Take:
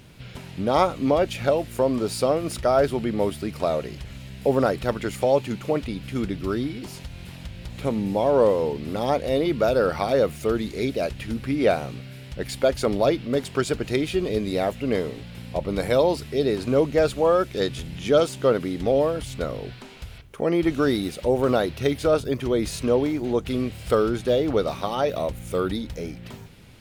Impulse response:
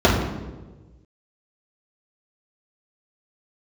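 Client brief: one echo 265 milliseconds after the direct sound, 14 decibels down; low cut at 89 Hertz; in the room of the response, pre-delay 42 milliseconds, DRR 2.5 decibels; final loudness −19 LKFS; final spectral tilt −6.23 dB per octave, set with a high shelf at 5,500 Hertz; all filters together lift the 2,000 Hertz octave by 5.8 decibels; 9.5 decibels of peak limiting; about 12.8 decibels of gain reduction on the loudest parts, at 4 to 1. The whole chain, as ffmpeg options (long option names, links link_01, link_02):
-filter_complex "[0:a]highpass=89,equalizer=frequency=2000:width_type=o:gain=8.5,highshelf=frequency=5500:gain=-7,acompressor=threshold=-30dB:ratio=4,alimiter=level_in=1dB:limit=-24dB:level=0:latency=1,volume=-1dB,aecho=1:1:265:0.2,asplit=2[link_01][link_02];[1:a]atrim=start_sample=2205,adelay=42[link_03];[link_02][link_03]afir=irnorm=-1:irlink=0,volume=-26.5dB[link_04];[link_01][link_04]amix=inputs=2:normalize=0,volume=12dB"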